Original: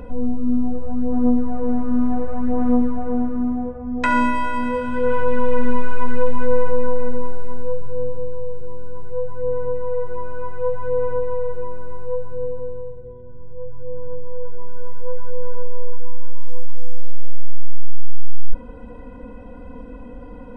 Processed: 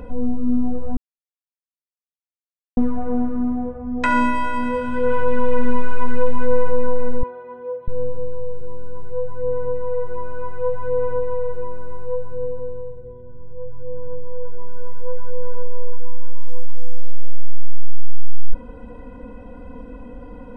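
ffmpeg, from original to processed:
-filter_complex "[0:a]asettb=1/sr,asplit=3[a][b][c];[a]atrim=end=7.234[d];[b]atrim=start=7.23:end=7.88,asetpts=PTS-STARTPTS,afade=t=in:d=0.004:c=qsin,afade=t=out:st=0.646:d=0.004:c=qsin,highpass=370[e];[c]atrim=start=7.876[f];[d][e]acrossfade=d=0.004:c1=hsin:c2=qsin[g];[g][f]acrossfade=d=0.004:c1=qsin:c2=hsin,asplit=3[h][i][j];[h]atrim=end=0.97,asetpts=PTS-STARTPTS,afade=t=out:st=0.966:d=0.004:c=hsin[k];[i]atrim=start=0.97:end=2.77,asetpts=PTS-STARTPTS,volume=0[l];[j]atrim=start=2.77,asetpts=PTS-STARTPTS,afade=t=in:d=0.004:c=hsin[m];[k][l][m]concat=n=3:v=0:a=1"

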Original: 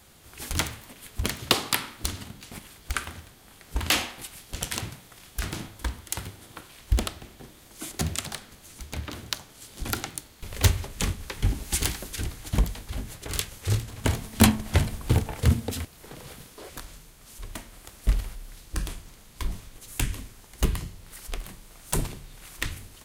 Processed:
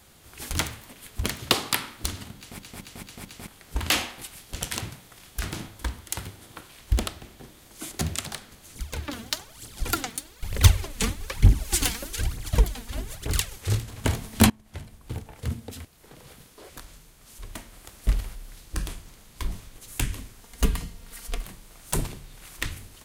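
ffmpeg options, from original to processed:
-filter_complex "[0:a]asettb=1/sr,asplit=3[a][b][c];[a]atrim=end=8.754[d];[b]atrim=start=8.75:end=13.56,asetpts=PTS-STARTPTS,afade=t=in:d=0.004:c=qsin,afade=t=out:st=4.806:d=0.004:c=qsin,aphaser=in_gain=1:out_gain=1:delay=4.6:decay=0.65:speed=1.1:type=triangular[e];[c]atrim=start=13.556[f];[d][e]acrossfade=d=0.004:c1=hsin:c2=qsin[g];[g][f]acrossfade=d=0.004:c1=qsin:c2=hsin,asettb=1/sr,asplit=3[h][i][j];[h]atrim=end=20.434[k];[i]atrim=start=20.43:end=21.44,asetpts=PTS-STARTPTS,afade=t=in:d=0.004:c=qsin,afade=t=out:st=1.006:d=0.004:c=qsin,aecho=1:1:4.3:0.59,atrim=end_sample=44541[l];[j]atrim=start=21.436[m];[k][l]acrossfade=d=0.004:c1=hsin:c2=qsin[n];[n][m]acrossfade=d=0.004:c1=qsin:c2=hsin,asplit=7[o][p][q][r][s][t][u];[o]atrim=end=2.592[v];[p]atrim=start=2.368:end=2.592[w];[q]atrim=start=2.368:end=2.592[x];[r]atrim=start=2.368:end=2.592[y];[s]atrim=start=2.368:end=2.592[z];[t]atrim=start=3.468:end=14.5,asetpts=PTS-STARTPTS,afade=t=out:st=11.028:d=0.004:c=hsin:silence=0.0668344[aa];[u]atrim=start=14.5,asetpts=PTS-STARTPTS,afade=t=in:d=3.39:silence=0.0668344[ab];[v][w]acrossfade=d=0.004:c1=hsin:c2=hsin[ac];[ac][x]acrossfade=d=0.004:c1=hsin:c2=hsin[ad];[ad][y]acrossfade=d=0.004:c1=hsin:c2=hsin[ae];[ae][z]acrossfade=d=0.004:c1=hsin:c2=hsin[af];[aa][ab]concat=n=2:v=0:a=1[ag];[af][ag]acrossfade=d=0.004:c1=hsin:c2=hsin"

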